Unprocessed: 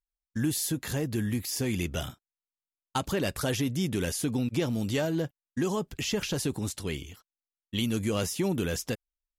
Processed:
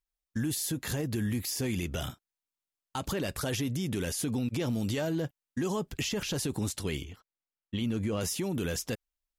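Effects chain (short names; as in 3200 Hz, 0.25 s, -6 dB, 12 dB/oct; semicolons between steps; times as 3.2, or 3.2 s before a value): 7.04–8.21 LPF 2000 Hz 6 dB/oct; limiter -25 dBFS, peak gain reduction 10 dB; gain +1.5 dB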